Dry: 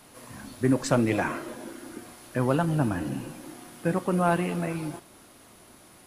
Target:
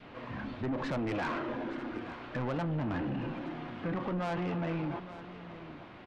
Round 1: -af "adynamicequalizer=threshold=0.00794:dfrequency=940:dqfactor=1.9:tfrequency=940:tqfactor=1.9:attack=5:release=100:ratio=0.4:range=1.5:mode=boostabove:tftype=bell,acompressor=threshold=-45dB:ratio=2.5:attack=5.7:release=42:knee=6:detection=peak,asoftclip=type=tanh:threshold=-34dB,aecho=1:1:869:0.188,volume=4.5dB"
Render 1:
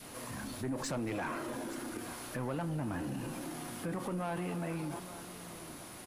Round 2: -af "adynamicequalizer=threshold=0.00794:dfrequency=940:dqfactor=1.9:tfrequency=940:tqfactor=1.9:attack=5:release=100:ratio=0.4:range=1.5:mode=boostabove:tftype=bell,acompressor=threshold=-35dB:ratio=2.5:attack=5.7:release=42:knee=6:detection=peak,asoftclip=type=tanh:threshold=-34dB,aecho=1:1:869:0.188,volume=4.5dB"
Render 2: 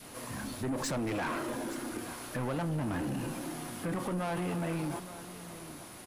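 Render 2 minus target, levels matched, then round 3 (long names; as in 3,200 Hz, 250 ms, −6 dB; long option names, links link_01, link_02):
4,000 Hz band +4.0 dB
-af "adynamicequalizer=threshold=0.00794:dfrequency=940:dqfactor=1.9:tfrequency=940:tqfactor=1.9:attack=5:release=100:ratio=0.4:range=1.5:mode=boostabove:tftype=bell,lowpass=frequency=3100:width=0.5412,lowpass=frequency=3100:width=1.3066,acompressor=threshold=-35dB:ratio=2.5:attack=5.7:release=42:knee=6:detection=peak,asoftclip=type=tanh:threshold=-34dB,aecho=1:1:869:0.188,volume=4.5dB"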